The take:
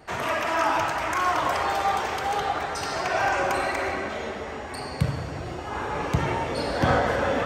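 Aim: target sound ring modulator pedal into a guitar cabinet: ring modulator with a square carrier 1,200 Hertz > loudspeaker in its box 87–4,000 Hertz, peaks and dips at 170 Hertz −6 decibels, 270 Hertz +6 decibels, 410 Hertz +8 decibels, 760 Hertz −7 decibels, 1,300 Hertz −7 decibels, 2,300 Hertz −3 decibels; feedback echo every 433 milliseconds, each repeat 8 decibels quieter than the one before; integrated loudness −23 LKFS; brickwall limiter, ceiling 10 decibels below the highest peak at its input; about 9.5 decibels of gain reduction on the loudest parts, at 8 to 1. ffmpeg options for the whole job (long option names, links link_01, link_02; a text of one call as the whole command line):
ffmpeg -i in.wav -af "acompressor=threshold=-28dB:ratio=8,alimiter=level_in=2.5dB:limit=-24dB:level=0:latency=1,volume=-2.5dB,aecho=1:1:433|866|1299|1732|2165:0.398|0.159|0.0637|0.0255|0.0102,aeval=exprs='val(0)*sgn(sin(2*PI*1200*n/s))':channel_layout=same,highpass=87,equalizer=frequency=170:width_type=q:width=4:gain=-6,equalizer=frequency=270:width_type=q:width=4:gain=6,equalizer=frequency=410:width_type=q:width=4:gain=8,equalizer=frequency=760:width_type=q:width=4:gain=-7,equalizer=frequency=1300:width_type=q:width=4:gain=-7,equalizer=frequency=2300:width_type=q:width=4:gain=-3,lowpass=frequency=4000:width=0.5412,lowpass=frequency=4000:width=1.3066,volume=11.5dB" out.wav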